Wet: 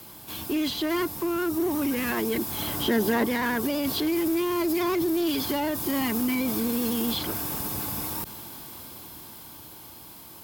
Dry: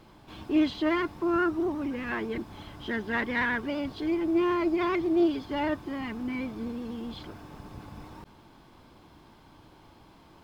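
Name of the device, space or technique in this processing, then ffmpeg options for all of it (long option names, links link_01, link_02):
FM broadcast chain: -filter_complex "[0:a]highpass=58,dynaudnorm=framelen=420:gausssize=11:maxgain=7dB,acrossover=split=180|1100|3300[link_01][link_02][link_03][link_04];[link_01]acompressor=threshold=-42dB:ratio=4[link_05];[link_02]acompressor=threshold=-23dB:ratio=4[link_06];[link_03]acompressor=threshold=-42dB:ratio=4[link_07];[link_04]acompressor=threshold=-47dB:ratio=4[link_08];[link_05][link_06][link_07][link_08]amix=inputs=4:normalize=0,aemphasis=mode=production:type=50fm,alimiter=limit=-23.5dB:level=0:latency=1:release=26,asoftclip=type=hard:threshold=-25.5dB,lowpass=frequency=15000:width=0.5412,lowpass=frequency=15000:width=1.3066,aemphasis=mode=production:type=50fm,asettb=1/sr,asplit=3[link_09][link_10][link_11];[link_09]atrim=end=2.624[link_12];[link_10]atrim=start=2.62:end=3.26,asetpts=PTS-STARTPTS,afade=type=in:duration=0.004:curve=qsin,afade=type=out:start_time=0.636:duration=0.004:curve=qsin,equalizer=frequency=370:width=0.38:gain=5[link_13];[link_11]atrim=start=3.256[link_14];[link_12][link_13]acrossfade=duration=0.004:curve1=hsin:curve2=qsin[link_15];[link_15][link_14]acrossfade=duration=0.004:curve1=qsin:curve2=hsin,volume=4.5dB"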